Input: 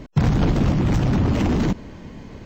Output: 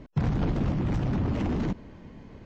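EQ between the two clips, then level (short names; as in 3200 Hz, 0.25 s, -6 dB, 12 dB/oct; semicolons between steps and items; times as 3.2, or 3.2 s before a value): LPF 3000 Hz 6 dB/oct; -8.0 dB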